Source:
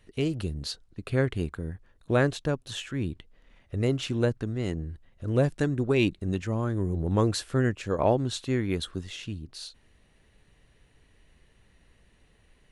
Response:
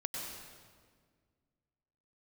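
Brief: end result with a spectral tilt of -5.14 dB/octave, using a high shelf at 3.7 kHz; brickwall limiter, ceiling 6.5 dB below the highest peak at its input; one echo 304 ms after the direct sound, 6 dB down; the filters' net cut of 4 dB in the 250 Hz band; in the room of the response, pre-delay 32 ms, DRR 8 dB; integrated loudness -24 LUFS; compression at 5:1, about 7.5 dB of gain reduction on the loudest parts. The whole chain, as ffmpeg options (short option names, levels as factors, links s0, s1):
-filter_complex "[0:a]equalizer=f=250:t=o:g=-5.5,highshelf=f=3700:g=3.5,acompressor=threshold=0.0447:ratio=5,alimiter=limit=0.0708:level=0:latency=1,aecho=1:1:304:0.501,asplit=2[s0][s1];[1:a]atrim=start_sample=2205,adelay=32[s2];[s1][s2]afir=irnorm=-1:irlink=0,volume=0.335[s3];[s0][s3]amix=inputs=2:normalize=0,volume=2.99"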